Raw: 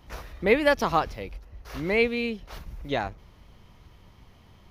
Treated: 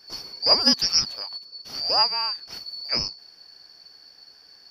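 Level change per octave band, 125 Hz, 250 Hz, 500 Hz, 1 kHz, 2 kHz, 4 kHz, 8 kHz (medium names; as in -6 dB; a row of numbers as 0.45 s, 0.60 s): -8.5 dB, -4.5 dB, -9.0 dB, -1.0 dB, -9.5 dB, +18.5 dB, no reading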